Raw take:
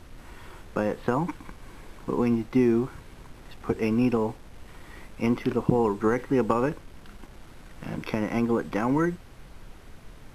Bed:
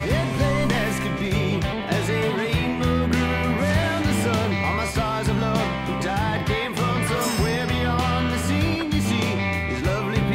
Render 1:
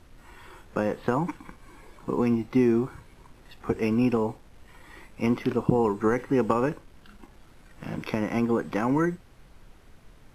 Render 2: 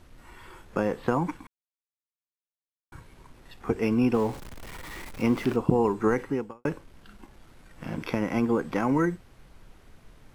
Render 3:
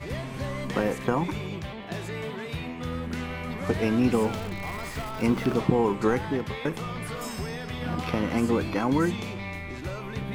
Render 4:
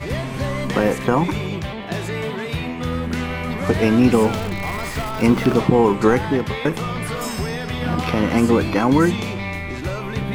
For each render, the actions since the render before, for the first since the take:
noise print and reduce 6 dB
1.47–2.92 mute; 4.14–5.56 zero-crossing step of -37.5 dBFS; 6.25–6.65 fade out quadratic
add bed -11.5 dB
gain +8.5 dB; limiter -3 dBFS, peak gain reduction 3 dB

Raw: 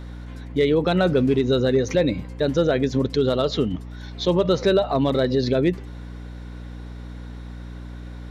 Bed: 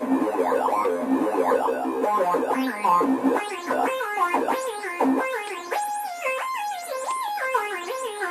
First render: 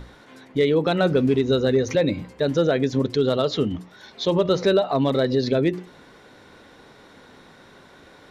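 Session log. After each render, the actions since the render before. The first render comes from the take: notches 60/120/180/240/300/360 Hz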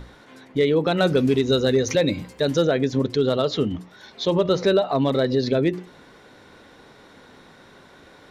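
0.98–2.65 high shelf 3900 Hz +10 dB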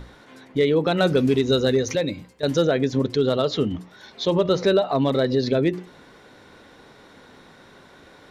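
1.67–2.43 fade out linear, to -13.5 dB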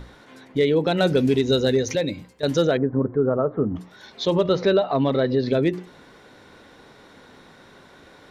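0.57–2.13 bell 1200 Hz -8.5 dB 0.24 oct; 2.77–3.76 steep low-pass 1500 Hz; 4.47–5.47 LPF 4900 Hz -> 3100 Hz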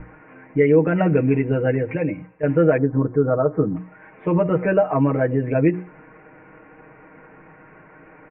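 steep low-pass 2600 Hz 96 dB/oct; comb 6.4 ms, depth 95%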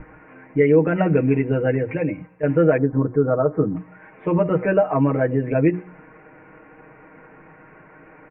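notches 60/120/180 Hz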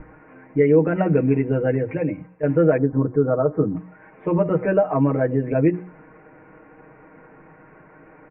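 high shelf 2300 Hz -9.5 dB; notches 60/120/180 Hz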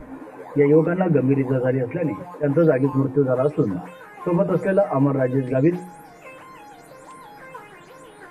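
add bed -16 dB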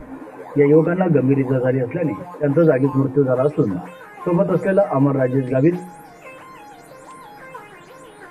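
gain +2.5 dB

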